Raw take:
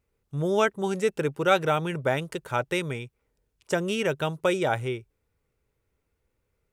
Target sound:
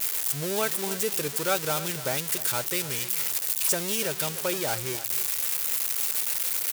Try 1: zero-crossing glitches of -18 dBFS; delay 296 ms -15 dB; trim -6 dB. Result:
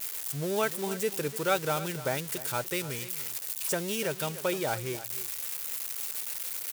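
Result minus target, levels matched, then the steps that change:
zero-crossing glitches: distortion -8 dB
change: zero-crossing glitches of -10 dBFS

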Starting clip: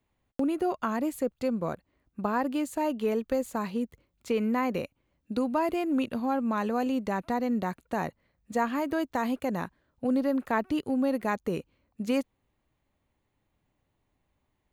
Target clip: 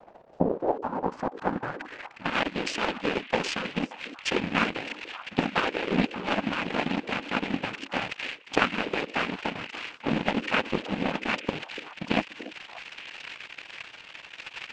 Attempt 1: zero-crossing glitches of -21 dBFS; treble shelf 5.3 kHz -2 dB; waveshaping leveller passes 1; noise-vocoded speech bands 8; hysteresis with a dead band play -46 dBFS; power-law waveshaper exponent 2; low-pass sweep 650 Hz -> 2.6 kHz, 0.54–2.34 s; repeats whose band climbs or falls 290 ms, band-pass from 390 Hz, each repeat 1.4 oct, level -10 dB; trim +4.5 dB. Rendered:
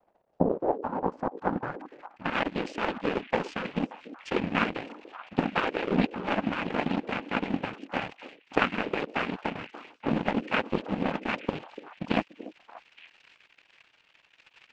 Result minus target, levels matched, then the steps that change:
zero-crossing glitches: distortion -10 dB; hysteresis with a dead band: distortion +10 dB
change: zero-crossing glitches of -10.5 dBFS; change: hysteresis with a dead band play -54.5 dBFS

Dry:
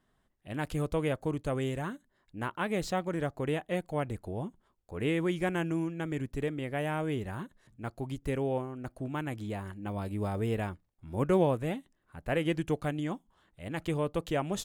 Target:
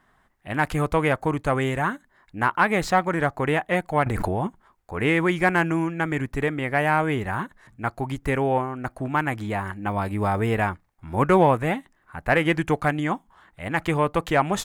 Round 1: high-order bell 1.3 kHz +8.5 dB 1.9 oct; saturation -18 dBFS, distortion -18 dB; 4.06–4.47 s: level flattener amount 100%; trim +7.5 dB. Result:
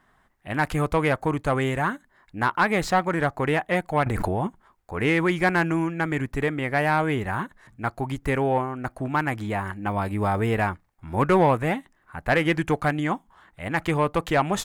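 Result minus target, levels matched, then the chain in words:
saturation: distortion +9 dB
high-order bell 1.3 kHz +8.5 dB 1.9 oct; saturation -12 dBFS, distortion -27 dB; 4.06–4.47 s: level flattener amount 100%; trim +7.5 dB

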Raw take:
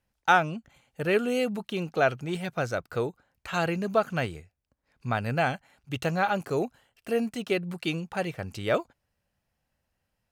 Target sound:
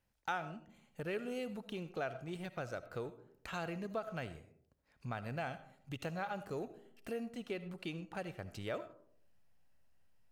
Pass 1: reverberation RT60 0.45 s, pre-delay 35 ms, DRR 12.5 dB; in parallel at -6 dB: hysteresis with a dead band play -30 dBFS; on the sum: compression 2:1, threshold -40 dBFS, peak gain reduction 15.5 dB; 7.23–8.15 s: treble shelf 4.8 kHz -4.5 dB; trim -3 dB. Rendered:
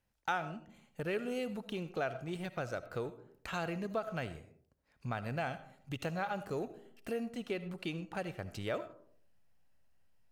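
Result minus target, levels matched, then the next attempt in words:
compression: peak gain reduction -3.5 dB
reverberation RT60 0.45 s, pre-delay 35 ms, DRR 12.5 dB; in parallel at -6 dB: hysteresis with a dead band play -30 dBFS; on the sum: compression 2:1, threshold -47 dBFS, peak gain reduction 19 dB; 7.23–8.15 s: treble shelf 4.8 kHz -4.5 dB; trim -3 dB

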